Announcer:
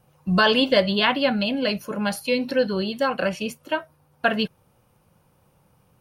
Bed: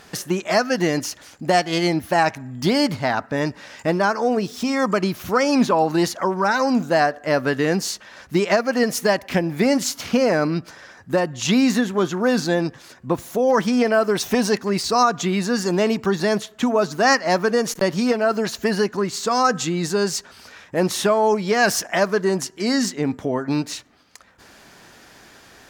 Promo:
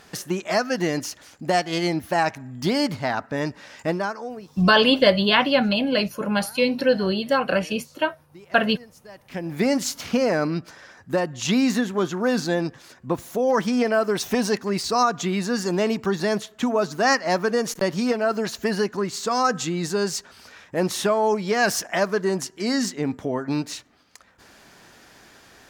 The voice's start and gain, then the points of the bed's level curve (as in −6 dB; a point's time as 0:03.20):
4.30 s, +2.0 dB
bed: 0:03.90 −3.5 dB
0:04.78 −27 dB
0:09.08 −27 dB
0:09.53 −3 dB